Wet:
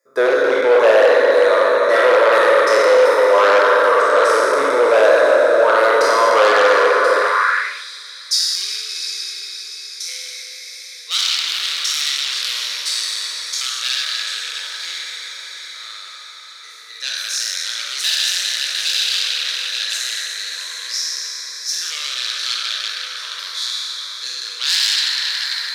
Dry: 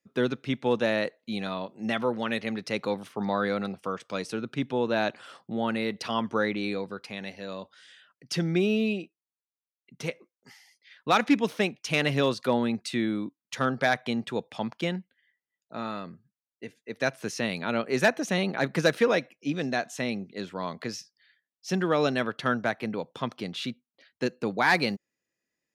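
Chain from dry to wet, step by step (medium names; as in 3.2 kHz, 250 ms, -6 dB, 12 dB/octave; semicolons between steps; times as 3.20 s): spectral sustain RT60 2.49 s; static phaser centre 770 Hz, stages 6; on a send: echo that smears into a reverb 708 ms, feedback 52%, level -9 dB; on the sum: spring tank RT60 3.1 s, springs 43/57 ms, chirp 20 ms, DRR 1 dB; in parallel at -8 dB: sine folder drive 14 dB, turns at -6.5 dBFS; on the sum: high-pass sweep 600 Hz -> 3.9 kHz, 7.18–7.90 s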